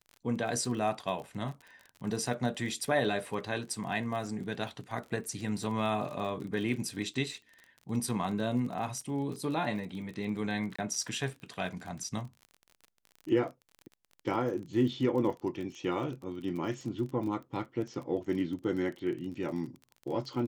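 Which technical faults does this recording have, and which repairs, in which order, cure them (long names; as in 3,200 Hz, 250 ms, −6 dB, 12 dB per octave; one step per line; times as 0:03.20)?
surface crackle 32 per second −39 dBFS
0:10.76–0:10.79: drop-out 25 ms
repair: click removal
repair the gap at 0:10.76, 25 ms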